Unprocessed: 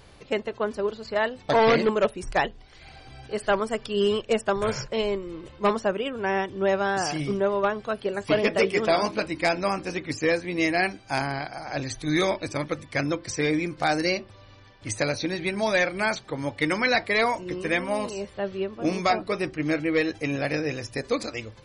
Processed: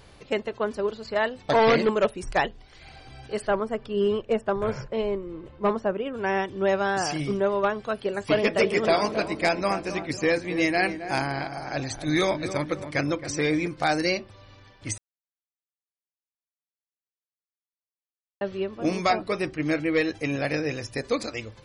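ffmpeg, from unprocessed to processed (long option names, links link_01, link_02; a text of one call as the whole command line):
ffmpeg -i in.wav -filter_complex "[0:a]asettb=1/sr,asplit=3[link_01][link_02][link_03];[link_01]atrim=end=3.474[link_04];[link_02]atrim=start=3.47:end=6.14,asetpts=PTS-STARTPTS,afade=type=in:duration=0.004:curve=qsin,afade=type=out:start_time=2.666:duration=0.004:curve=qsin,lowpass=frequency=1200:poles=1[link_05];[link_03]atrim=start=6.136[link_06];[link_04][link_05]acrossfade=duration=0.004:curve1=hsin:curve2=qsin[link_07];[link_07][link_06]acrossfade=duration=0.004:curve1=qsin:curve2=hsin,asettb=1/sr,asplit=3[link_08][link_09][link_10];[link_08]atrim=end=8.334[link_11];[link_09]atrim=start=8.33:end=13.68,asetpts=PTS-STARTPTS,afade=type=in:duration=0.004:curve=qsin,afade=type=out:start_time=5.346:duration=0.004:curve=qsin,asplit=2[link_12][link_13];[link_13]adelay=269,lowpass=frequency=1300:poles=1,volume=-10dB,asplit=2[link_14][link_15];[link_15]adelay=269,lowpass=frequency=1300:poles=1,volume=0.51,asplit=2[link_16][link_17];[link_17]adelay=269,lowpass=frequency=1300:poles=1,volume=0.51,asplit=2[link_18][link_19];[link_19]adelay=269,lowpass=frequency=1300:poles=1,volume=0.51,asplit=2[link_20][link_21];[link_21]adelay=269,lowpass=frequency=1300:poles=1,volume=0.51,asplit=2[link_22][link_23];[link_23]adelay=269,lowpass=frequency=1300:poles=1,volume=0.51[link_24];[link_12][link_14][link_16][link_18][link_20][link_22][link_24]amix=inputs=7:normalize=0,atrim=end_sample=235935[link_25];[link_10]atrim=start=13.676[link_26];[link_11][link_25]acrossfade=duration=0.004:curve1=hsin:curve2=qsin[link_27];[link_27][link_26]acrossfade=duration=0.004:curve1=qsin:curve2=hsin,asplit=3[link_28][link_29][link_30];[link_28]atrim=end=14.98,asetpts=PTS-STARTPTS,afade=type=out:start_time=14.976:duration=0.004:curve=hsin[link_31];[link_29]atrim=start=14.98:end=18.41,asetpts=PTS-STARTPTS,volume=0[link_32];[link_30]atrim=start=18.41,asetpts=PTS-STARTPTS,afade=type=in:duration=0.004:curve=hsin[link_33];[link_31][link_32][link_33]concat=n=3:v=0:a=1" out.wav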